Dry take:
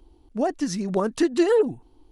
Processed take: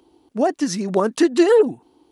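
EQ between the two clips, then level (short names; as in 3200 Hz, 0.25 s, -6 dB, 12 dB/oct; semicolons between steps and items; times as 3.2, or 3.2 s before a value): HPF 200 Hz 12 dB/oct; +5.5 dB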